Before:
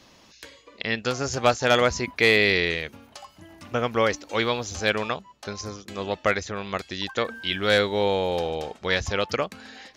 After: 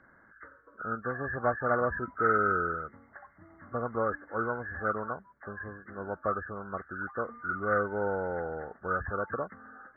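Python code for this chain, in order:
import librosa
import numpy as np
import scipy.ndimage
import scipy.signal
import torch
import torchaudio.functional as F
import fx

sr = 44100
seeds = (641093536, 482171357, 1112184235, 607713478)

y = fx.freq_compress(x, sr, knee_hz=1100.0, ratio=4.0)
y = fx.air_absorb(y, sr, metres=220.0)
y = F.gain(torch.from_numpy(y), -7.5).numpy()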